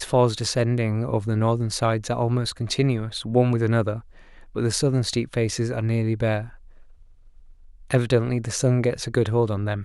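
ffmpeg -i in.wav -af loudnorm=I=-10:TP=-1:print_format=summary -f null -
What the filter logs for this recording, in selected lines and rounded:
Input Integrated:    -23.3 LUFS
Input True Peak:      -6.0 dBTP
Input LRA:             2.6 LU
Input Threshold:     -34.2 LUFS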